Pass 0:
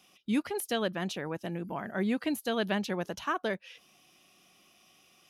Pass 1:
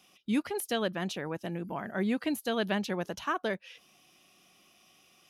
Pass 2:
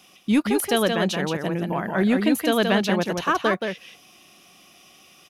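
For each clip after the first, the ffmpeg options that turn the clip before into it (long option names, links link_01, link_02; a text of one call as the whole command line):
ffmpeg -i in.wav -af anull out.wav
ffmpeg -i in.wav -filter_complex "[0:a]asplit=2[link_01][link_02];[link_02]aeval=exprs='clip(val(0),-1,0.0531)':channel_layout=same,volume=-3.5dB[link_03];[link_01][link_03]amix=inputs=2:normalize=0,aecho=1:1:175:0.562,volume=5dB" out.wav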